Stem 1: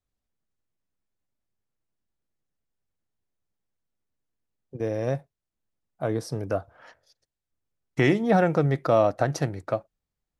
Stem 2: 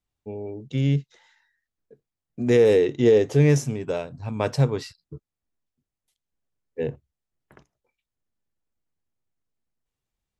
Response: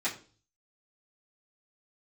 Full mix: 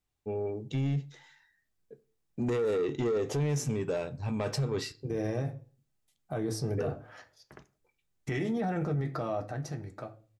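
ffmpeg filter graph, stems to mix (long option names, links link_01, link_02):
-filter_complex "[0:a]bass=frequency=250:gain=5,treble=frequency=4000:gain=4,alimiter=limit=-17.5dB:level=0:latency=1:release=67,adynamicequalizer=threshold=0.00447:dfrequency=2700:dqfactor=0.7:tfrequency=2700:tqfactor=0.7:attack=5:release=100:ratio=0.375:range=2:mode=cutabove:tftype=highshelf,adelay=300,volume=-3.5dB,afade=type=out:start_time=9.01:duration=0.54:silence=0.398107,asplit=2[link_01][link_02];[link_02]volume=-8.5dB[link_03];[1:a]acompressor=threshold=-20dB:ratio=6,asoftclip=type=tanh:threshold=-21.5dB,volume=-0.5dB,asplit=2[link_04][link_05];[link_05]volume=-15.5dB[link_06];[2:a]atrim=start_sample=2205[link_07];[link_03][link_06]amix=inputs=2:normalize=0[link_08];[link_08][link_07]afir=irnorm=-1:irlink=0[link_09];[link_01][link_04][link_09]amix=inputs=3:normalize=0,alimiter=limit=-24dB:level=0:latency=1:release=24"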